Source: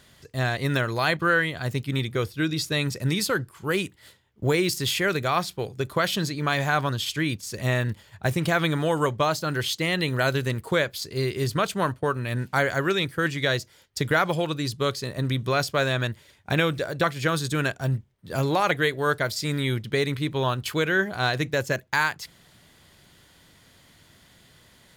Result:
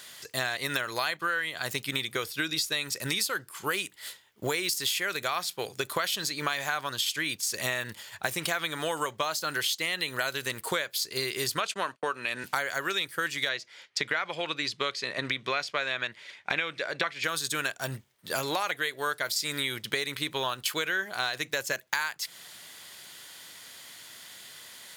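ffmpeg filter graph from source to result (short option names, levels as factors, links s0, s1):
-filter_complex "[0:a]asettb=1/sr,asplit=3[s0][s1][s2];[s0]atrim=end=11.604[s3];[s1]atrim=start=11.6:end=12.44,asetpts=PTS-STARTPTS,afade=t=in:d=0.004:c=qsin,afade=t=out:st=0.836:d=0.004:c=qsin,agate=range=0.0447:threshold=0.0141:ratio=16:release=100:detection=peak,highpass=190,lowpass=7400,equalizer=f=2600:w=4.7:g=5[s4];[s2]atrim=start=12.436[s5];[s3][s4]acrossfade=d=0.004:c1=hsin:c2=qsin[s6];[s6][s5]acrossfade=d=0.004:c1=qsin:c2=hsin,asettb=1/sr,asplit=3[s7][s8][s9];[s7]atrim=end=13.494[s10];[s8]atrim=start=13.49:end=17.24,asetpts=PTS-STARTPTS,afade=t=in:d=0.004:c=qsin,afade=t=out:st=3.746:d=0.004:c=qsin,highpass=130,lowpass=4300,equalizer=f=2200:t=o:w=0.52:g=6[s11];[s9]atrim=start=17.236[s12];[s10][s11]acrossfade=d=0.004:c1=hsin:c2=qsin[s13];[s13][s12]acrossfade=d=0.004:c1=qsin:c2=hsin,highpass=f=1200:p=1,highshelf=f=5200:g=5,acompressor=threshold=0.0158:ratio=6,volume=2.82"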